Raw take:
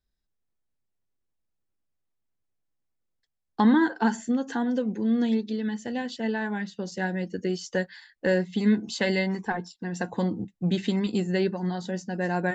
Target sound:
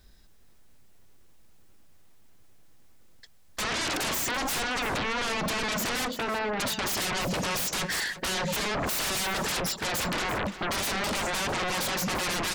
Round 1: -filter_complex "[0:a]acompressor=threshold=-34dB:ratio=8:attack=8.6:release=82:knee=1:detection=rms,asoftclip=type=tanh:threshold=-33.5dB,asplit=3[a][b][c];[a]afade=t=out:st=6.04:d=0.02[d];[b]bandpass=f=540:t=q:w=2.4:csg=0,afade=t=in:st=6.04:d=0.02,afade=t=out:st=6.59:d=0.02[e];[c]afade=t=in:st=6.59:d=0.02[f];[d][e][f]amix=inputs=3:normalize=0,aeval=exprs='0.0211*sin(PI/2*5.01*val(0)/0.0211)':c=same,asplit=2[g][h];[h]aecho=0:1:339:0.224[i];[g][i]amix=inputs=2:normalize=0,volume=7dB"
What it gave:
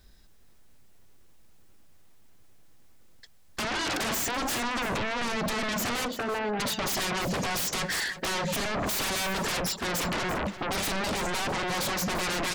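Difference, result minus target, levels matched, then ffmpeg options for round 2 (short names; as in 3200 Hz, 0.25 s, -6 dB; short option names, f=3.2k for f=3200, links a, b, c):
soft clip: distortion +18 dB
-filter_complex "[0:a]acompressor=threshold=-34dB:ratio=8:attack=8.6:release=82:knee=1:detection=rms,asoftclip=type=tanh:threshold=-22dB,asplit=3[a][b][c];[a]afade=t=out:st=6.04:d=0.02[d];[b]bandpass=f=540:t=q:w=2.4:csg=0,afade=t=in:st=6.04:d=0.02,afade=t=out:st=6.59:d=0.02[e];[c]afade=t=in:st=6.59:d=0.02[f];[d][e][f]amix=inputs=3:normalize=0,aeval=exprs='0.0211*sin(PI/2*5.01*val(0)/0.0211)':c=same,asplit=2[g][h];[h]aecho=0:1:339:0.224[i];[g][i]amix=inputs=2:normalize=0,volume=7dB"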